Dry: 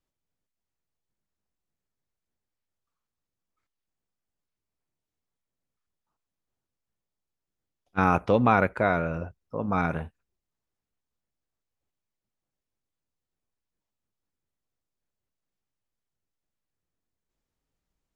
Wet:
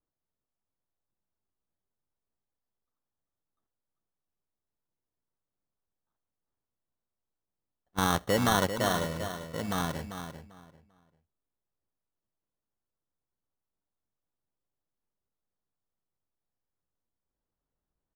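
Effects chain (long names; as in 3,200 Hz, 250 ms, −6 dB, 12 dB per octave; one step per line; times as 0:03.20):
decimation without filtering 18×
on a send: repeating echo 394 ms, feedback 23%, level −9 dB
on the sum: one half of a high-frequency compander decoder only
level −5 dB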